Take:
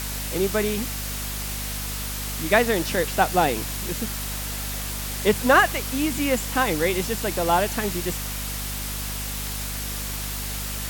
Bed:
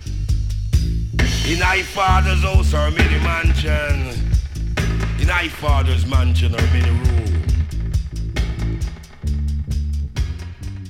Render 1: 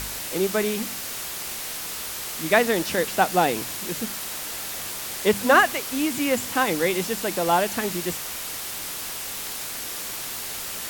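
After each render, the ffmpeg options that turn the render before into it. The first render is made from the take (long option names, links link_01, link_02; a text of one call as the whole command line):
ffmpeg -i in.wav -af "bandreject=frequency=50:width_type=h:width=4,bandreject=frequency=100:width_type=h:width=4,bandreject=frequency=150:width_type=h:width=4,bandreject=frequency=200:width_type=h:width=4,bandreject=frequency=250:width_type=h:width=4" out.wav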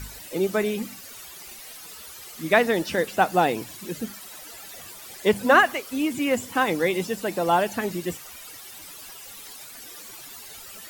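ffmpeg -i in.wav -af "afftdn=noise_reduction=14:noise_floor=-33" out.wav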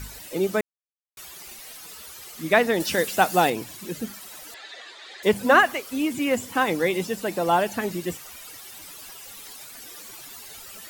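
ffmpeg -i in.wav -filter_complex "[0:a]asettb=1/sr,asplit=3[link_01][link_02][link_03];[link_01]atrim=end=2.804[link_04];[link_02]atrim=start=2.8:end=3.5,asetpts=PTS-STARTPTS,afade=type=in:duration=0.004:curve=qsin,afade=type=out:start_time=0.696:duration=0.004:curve=qsin,highshelf=frequency=3100:gain=9[link_05];[link_03]atrim=start=3.496[link_06];[link_04][link_05]acrossfade=duration=0.004:curve1=hsin:curve2=qsin[link_07];[link_07][link_06]acrossfade=duration=0.004:curve1=qsin:curve2=hsin,asettb=1/sr,asplit=3[link_08][link_09][link_10];[link_08]atrim=end=4.544[link_11];[link_09]atrim=start=4.54:end=5.23,asetpts=PTS-STARTPTS,afade=type=in:duration=0.004:curve=qsin,afade=type=out:start_time=0.686:duration=0.004:curve=qsin,highpass=frequency=340:width=0.5412,highpass=frequency=340:width=1.3066,equalizer=frequency=1800:width_type=q:width=4:gain=9,equalizer=frequency=3800:width_type=q:width=4:gain=9,equalizer=frequency=5600:width_type=q:width=4:gain=-7,lowpass=frequency=5800:width=0.5412,lowpass=frequency=5800:width=1.3066[link_12];[link_10]atrim=start=5.226[link_13];[link_11][link_12]acrossfade=duration=0.004:curve1=hsin:curve2=qsin[link_14];[link_14][link_13]acrossfade=duration=0.004:curve1=qsin:curve2=hsin,asplit=3[link_15][link_16][link_17];[link_15]atrim=end=0.61,asetpts=PTS-STARTPTS,afade=type=out:start_time=0.606:duration=0.004:curve=hsin[link_18];[link_16]atrim=start=0.61:end=1.17,asetpts=PTS-STARTPTS,volume=0[link_19];[link_17]atrim=start=1.17,asetpts=PTS-STARTPTS,afade=type=in:duration=0.004:curve=hsin[link_20];[link_18][link_19][link_20]concat=n=3:v=0:a=1" out.wav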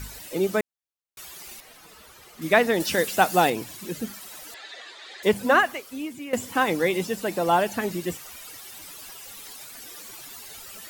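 ffmpeg -i in.wav -filter_complex "[0:a]asettb=1/sr,asplit=3[link_01][link_02][link_03];[link_01]atrim=end=1.604[link_04];[link_02]atrim=start=1.6:end=2.42,asetpts=PTS-STARTPTS,afade=type=in:duration=0.004:curve=qsin,afade=type=out:start_time=0.816:duration=0.004:curve=qsin,highshelf=frequency=3000:gain=-11.5[link_05];[link_03]atrim=start=2.416[link_06];[link_04][link_05]acrossfade=duration=0.004:curve1=hsin:curve2=qsin[link_07];[link_07][link_06]acrossfade=duration=0.004:curve1=qsin:curve2=hsin,asplit=2[link_08][link_09];[link_08]atrim=end=6.33,asetpts=PTS-STARTPTS,afade=type=out:start_time=5.2:duration=1.13:silence=0.199526[link_10];[link_09]atrim=start=6.33,asetpts=PTS-STARTPTS,afade=type=in:duration=0.004:curve=hsin:silence=0.199526[link_11];[link_10][link_11]concat=n=2:v=0:a=1" out.wav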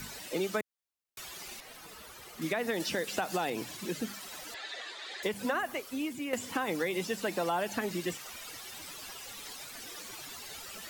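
ffmpeg -i in.wav -filter_complex "[0:a]alimiter=limit=-14dB:level=0:latency=1:release=135,acrossover=split=130|1000|7300[link_01][link_02][link_03][link_04];[link_01]acompressor=threshold=-60dB:ratio=4[link_05];[link_02]acompressor=threshold=-32dB:ratio=4[link_06];[link_03]acompressor=threshold=-35dB:ratio=4[link_07];[link_04]acompressor=threshold=-50dB:ratio=4[link_08];[link_05][link_06][link_07][link_08]amix=inputs=4:normalize=0" out.wav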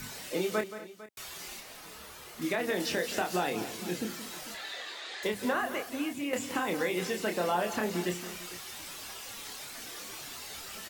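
ffmpeg -i in.wav -filter_complex "[0:a]asplit=2[link_01][link_02];[link_02]adelay=28,volume=-5dB[link_03];[link_01][link_03]amix=inputs=2:normalize=0,aecho=1:1:175|237|451:0.237|0.126|0.133" out.wav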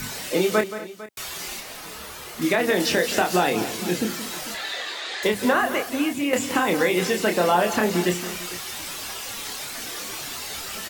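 ffmpeg -i in.wav -af "volume=10dB" out.wav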